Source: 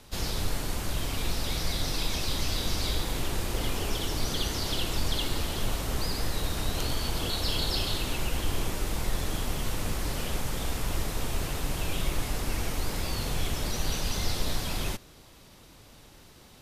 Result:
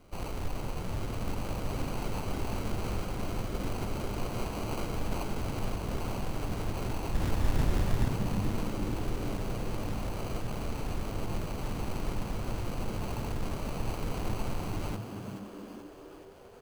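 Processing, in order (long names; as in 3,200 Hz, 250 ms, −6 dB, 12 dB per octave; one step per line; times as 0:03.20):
stylus tracing distortion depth 0.22 ms
0:07.13–0:08.08: bass and treble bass +9 dB, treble −4 dB
decimation without filtering 25×
on a send: echo with shifted repeats 429 ms, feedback 59%, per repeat +94 Hz, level −9 dB
on the sum: level −5 dB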